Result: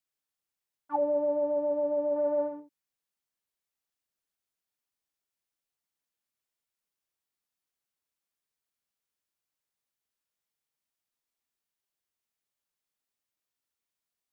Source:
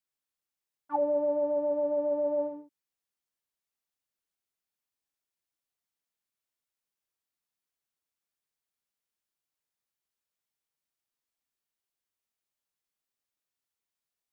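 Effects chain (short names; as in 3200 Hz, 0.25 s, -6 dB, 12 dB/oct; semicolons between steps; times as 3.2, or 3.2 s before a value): 2.16–2.6 bell 1500 Hz +10.5 dB 0.96 oct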